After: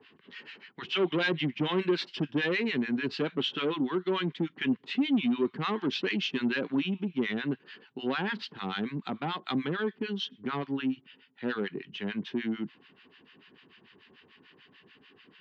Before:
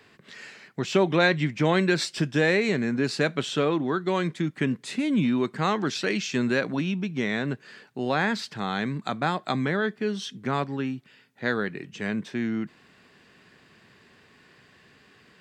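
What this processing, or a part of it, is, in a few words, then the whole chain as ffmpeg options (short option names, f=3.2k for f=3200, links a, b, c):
guitar amplifier with harmonic tremolo: -filter_complex "[0:a]acrossover=split=1000[a][b];[a]aeval=exprs='val(0)*(1-1/2+1/2*cos(2*PI*6.8*n/s))':c=same[c];[b]aeval=exprs='val(0)*(1-1/2-1/2*cos(2*PI*6.8*n/s))':c=same[d];[c][d]amix=inputs=2:normalize=0,asoftclip=type=tanh:threshold=-23.5dB,highpass=100,equalizer=f=120:t=q:w=4:g=-5,equalizer=f=270:t=q:w=4:g=5,equalizer=f=380:t=q:w=4:g=4,equalizer=f=620:t=q:w=4:g=-7,equalizer=f=980:t=q:w=4:g=3,equalizer=f=3k:t=q:w=4:g=10,lowpass=f=4.3k:w=0.5412,lowpass=f=4.3k:w=1.3066"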